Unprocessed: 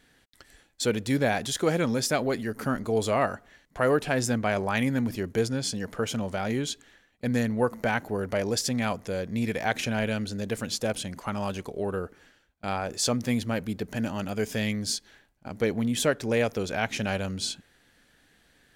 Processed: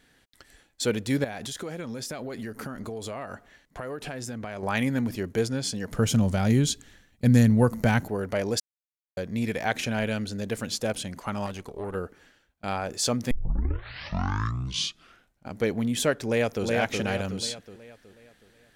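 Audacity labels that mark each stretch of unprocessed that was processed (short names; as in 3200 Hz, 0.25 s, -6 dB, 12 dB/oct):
1.240000	4.630000	compressor 12:1, threshold -31 dBFS
5.910000	8.080000	tone controls bass +13 dB, treble +7 dB
8.600000	9.170000	mute
11.460000	11.950000	tube stage drive 25 dB, bias 0.6
13.310000	13.310000	tape start 2.17 s
16.250000	16.650000	echo throw 0.37 s, feedback 45%, level -3 dB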